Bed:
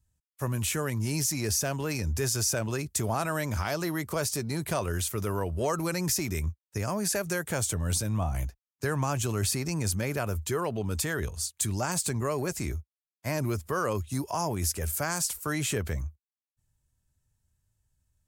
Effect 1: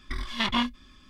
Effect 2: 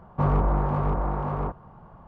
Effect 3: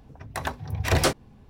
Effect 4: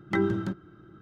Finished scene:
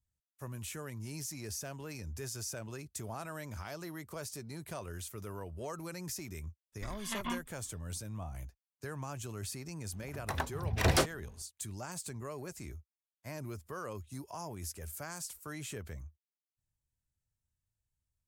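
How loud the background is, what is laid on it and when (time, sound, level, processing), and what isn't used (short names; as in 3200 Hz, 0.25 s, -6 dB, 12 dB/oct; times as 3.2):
bed -13 dB
6.72 add 1 -11 dB, fades 0.10 s + treble ducked by the level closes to 2300 Hz, closed at -24.5 dBFS
9.93 add 3 -5.5 dB
not used: 2, 4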